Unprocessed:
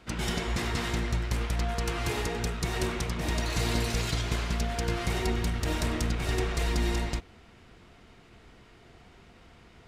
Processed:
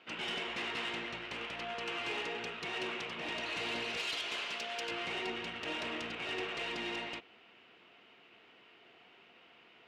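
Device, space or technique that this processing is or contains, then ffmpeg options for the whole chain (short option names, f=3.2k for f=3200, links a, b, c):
intercom: -filter_complex "[0:a]asettb=1/sr,asplit=3[a][b][c];[a]atrim=end=3.974[d];[b]atrim=start=3.97:end=4.91,asetpts=PTS-STARTPTS,afade=t=in:d=0.004:c=qsin,afade=t=out:st=0.936:d=0.004:c=qsin,bass=f=250:g=-13,treble=f=4k:g=9[e];[c]atrim=start=4.906[f];[d][e]acrossfade=d=0.004:c1=hsin:c2=qsin[g];[g][f]acrossfade=d=0.004:c1=qsin:c2=hsin,highpass=340,lowpass=3.5k,equalizer=f=2.8k:t=o:w=0.56:g=11,asoftclip=type=tanh:threshold=-24.5dB,volume=-5dB"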